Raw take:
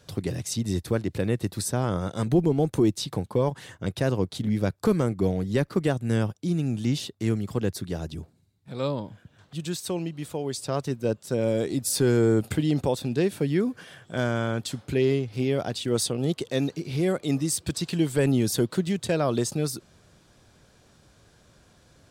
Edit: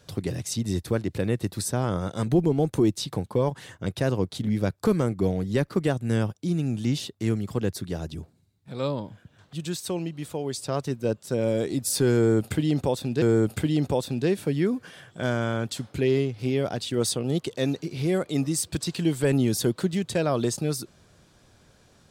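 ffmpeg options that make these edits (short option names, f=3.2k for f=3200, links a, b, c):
-filter_complex "[0:a]asplit=2[a][b];[a]atrim=end=13.222[c];[b]atrim=start=12.158[d];[c][d]acrossfade=d=0.004:c1=hsin:c2=hsin"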